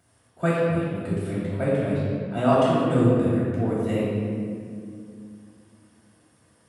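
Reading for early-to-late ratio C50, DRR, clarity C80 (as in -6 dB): -2.0 dB, -12.0 dB, -0.5 dB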